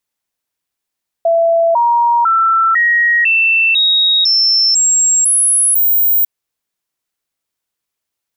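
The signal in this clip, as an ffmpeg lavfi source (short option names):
-f lavfi -i "aevalsrc='0.376*clip(min(mod(t,0.5),0.5-mod(t,0.5))/0.005,0,1)*sin(2*PI*668*pow(2,floor(t/0.5)/2)*mod(t,0.5))':d=5:s=44100"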